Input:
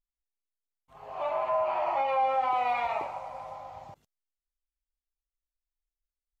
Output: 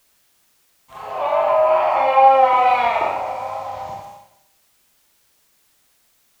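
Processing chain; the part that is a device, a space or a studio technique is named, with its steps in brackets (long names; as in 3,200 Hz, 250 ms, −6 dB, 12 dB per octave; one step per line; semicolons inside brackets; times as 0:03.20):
high-pass filter 40 Hz
four-comb reverb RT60 0.81 s, combs from 30 ms, DRR −2 dB
noise-reduction cassette on a plain deck (one half of a high-frequency compander encoder only; tape wow and flutter 26 cents; white noise bed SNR 41 dB)
level +8.5 dB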